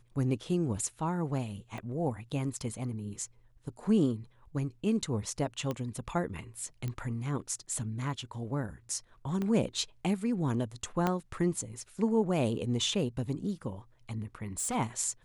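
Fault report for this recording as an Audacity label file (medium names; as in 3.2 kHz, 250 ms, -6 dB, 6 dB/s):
1.780000	1.780000	pop -28 dBFS
5.710000	5.710000	pop -21 dBFS
6.880000	6.880000	pop -23 dBFS
9.420000	9.420000	pop -22 dBFS
11.070000	11.070000	pop -15 dBFS
14.430000	14.760000	clipped -30 dBFS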